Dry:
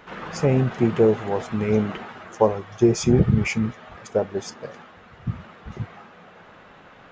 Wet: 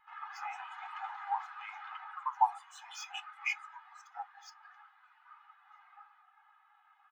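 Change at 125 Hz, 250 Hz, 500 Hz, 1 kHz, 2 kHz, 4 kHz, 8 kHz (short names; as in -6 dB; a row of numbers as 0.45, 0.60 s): under -40 dB, under -40 dB, under -40 dB, -3.0 dB, -8.0 dB, -10.5 dB, -17.0 dB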